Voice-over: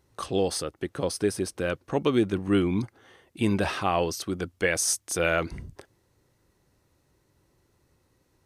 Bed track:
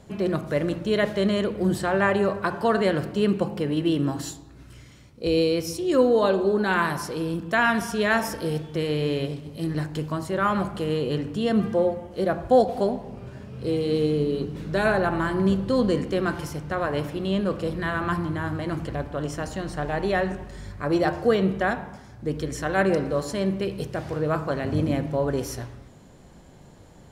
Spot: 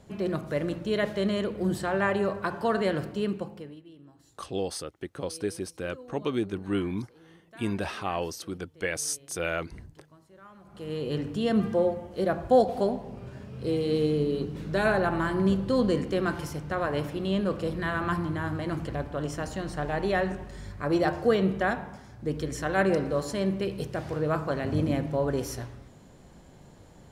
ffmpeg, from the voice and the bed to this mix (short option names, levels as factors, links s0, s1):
-filter_complex "[0:a]adelay=4200,volume=0.531[s0];[1:a]volume=11.2,afade=t=out:st=3.03:d=0.79:silence=0.0668344,afade=t=in:st=10.64:d=0.59:silence=0.0530884[s1];[s0][s1]amix=inputs=2:normalize=0"